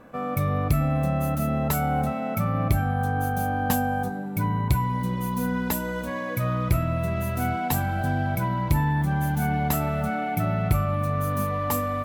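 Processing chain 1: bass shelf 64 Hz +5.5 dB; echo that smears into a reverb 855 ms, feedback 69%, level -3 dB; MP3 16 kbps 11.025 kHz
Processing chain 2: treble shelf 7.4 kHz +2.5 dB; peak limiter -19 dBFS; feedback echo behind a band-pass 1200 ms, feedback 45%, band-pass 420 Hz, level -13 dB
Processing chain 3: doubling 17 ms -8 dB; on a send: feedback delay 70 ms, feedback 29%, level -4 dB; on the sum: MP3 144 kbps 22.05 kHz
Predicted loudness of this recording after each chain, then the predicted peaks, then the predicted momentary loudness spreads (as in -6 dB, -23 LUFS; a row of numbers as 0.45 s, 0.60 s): -23.0 LUFS, -28.0 LUFS, -25.0 LUFS; -8.0 dBFS, -17.5 dBFS, -9.0 dBFS; 3 LU, 2 LU, 5 LU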